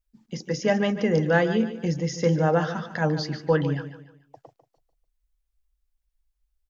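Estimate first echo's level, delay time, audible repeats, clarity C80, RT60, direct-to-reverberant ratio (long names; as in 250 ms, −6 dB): −12.0 dB, 147 ms, 3, no reverb audible, no reverb audible, no reverb audible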